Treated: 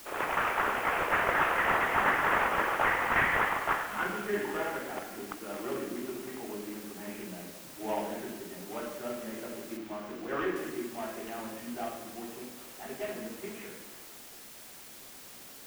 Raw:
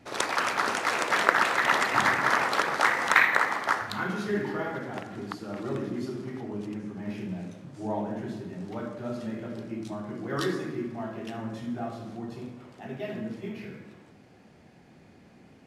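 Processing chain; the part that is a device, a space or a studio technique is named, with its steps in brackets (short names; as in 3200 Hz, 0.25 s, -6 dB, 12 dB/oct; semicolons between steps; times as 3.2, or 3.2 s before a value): army field radio (BPF 330–2800 Hz; CVSD 16 kbps; white noise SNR 16 dB); 9.77–10.56 bell 11000 Hz -10 dB 1.8 oct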